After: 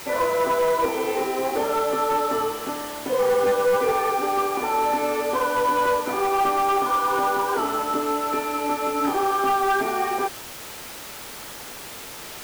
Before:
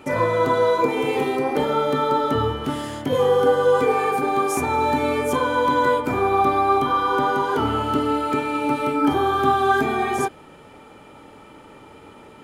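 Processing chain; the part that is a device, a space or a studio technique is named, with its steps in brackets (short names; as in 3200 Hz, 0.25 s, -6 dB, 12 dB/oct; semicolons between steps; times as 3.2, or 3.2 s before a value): aircraft radio (BPF 390–2300 Hz; hard clip -16 dBFS, distortion -16 dB; white noise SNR 10 dB); high shelf 4400 Hz -7.5 dB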